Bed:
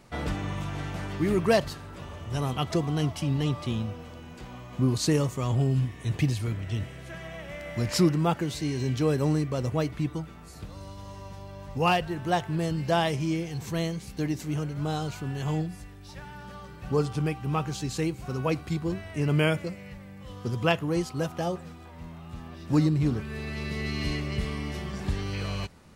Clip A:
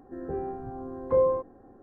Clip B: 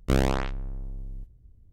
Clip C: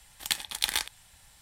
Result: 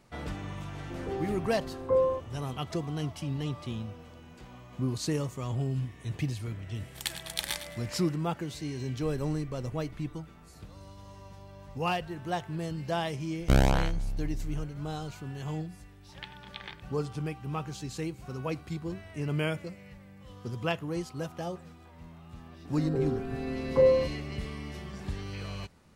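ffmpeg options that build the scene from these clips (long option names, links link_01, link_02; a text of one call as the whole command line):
ffmpeg -i bed.wav -i cue0.wav -i cue1.wav -i cue2.wav -filter_complex "[1:a]asplit=2[link_01][link_02];[3:a]asplit=2[link_03][link_04];[2:a]asplit=2[link_05][link_06];[0:a]volume=-6.5dB[link_07];[link_03]aecho=1:1:107|214|321:0.266|0.0825|0.0256[link_08];[link_05]aeval=exprs='max(val(0),0)':channel_layout=same[link_09];[link_06]aecho=1:1:1.3:0.37[link_10];[link_04]lowpass=frequency=3200:width=0.5412,lowpass=frequency=3200:width=1.3066[link_11];[link_02]aecho=1:1:7.1:0.87[link_12];[link_01]atrim=end=1.82,asetpts=PTS-STARTPTS,volume=-2.5dB,afade=type=in:duration=0.004:curve=hsin,afade=type=out:start_time=1.816:duration=0.004:curve=hsin,adelay=780[link_13];[link_08]atrim=end=1.41,asetpts=PTS-STARTPTS,volume=-5.5dB,afade=type=in:duration=0.004:curve=hsin,afade=type=out:start_time=1.406:duration=0.004:curve=hsin,adelay=6750[link_14];[link_09]atrim=end=1.72,asetpts=PTS-STARTPTS,volume=-13.5dB,afade=type=in:duration=0.004:curve=hsin,afade=type=out:start_time=1.716:duration=0.004:curve=hsin,adelay=8940[link_15];[link_10]atrim=end=1.72,asetpts=PTS-STARTPTS,volume=-0.5dB,afade=type=in:duration=0.004:curve=hsin,afade=type=out:start_time=1.716:duration=0.004:curve=hsin,adelay=13400[link_16];[link_11]atrim=end=1.41,asetpts=PTS-STARTPTS,volume=-11dB,afade=type=in:duration=0.004:curve=hsin,afade=type=out:start_time=1.406:duration=0.004:curve=hsin,adelay=15920[link_17];[link_12]atrim=end=1.82,asetpts=PTS-STARTPTS,afade=type=in:duration=0.004:curve=hsin,afade=type=out:start_time=1.816:duration=0.004:curve=hsin,adelay=22650[link_18];[link_07][link_13][link_14][link_15][link_16][link_17][link_18]amix=inputs=7:normalize=0" out.wav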